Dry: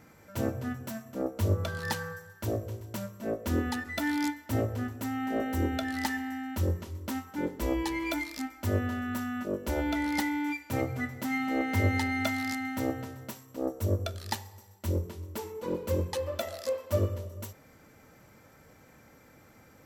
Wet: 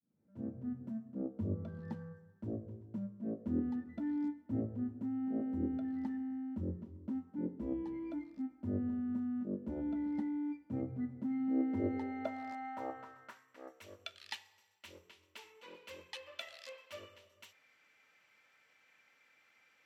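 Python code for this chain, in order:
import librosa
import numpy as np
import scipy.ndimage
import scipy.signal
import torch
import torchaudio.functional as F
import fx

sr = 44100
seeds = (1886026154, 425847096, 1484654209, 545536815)

y = fx.fade_in_head(x, sr, length_s=0.86)
y = fx.filter_sweep_bandpass(y, sr, from_hz=210.0, to_hz=2700.0, start_s=11.38, end_s=13.93, q=2.3)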